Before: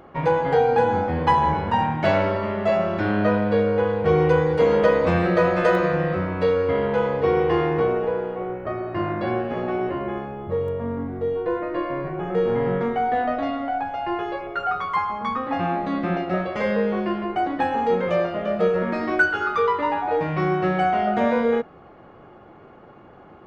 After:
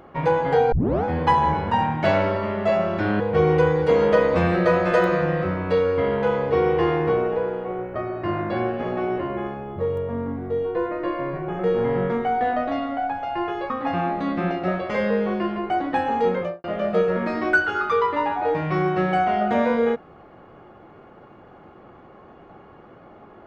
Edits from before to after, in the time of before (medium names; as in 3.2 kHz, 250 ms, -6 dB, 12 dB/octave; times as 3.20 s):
0.72 s: tape start 0.32 s
3.20–3.91 s: delete
14.41–15.36 s: delete
17.98–18.30 s: studio fade out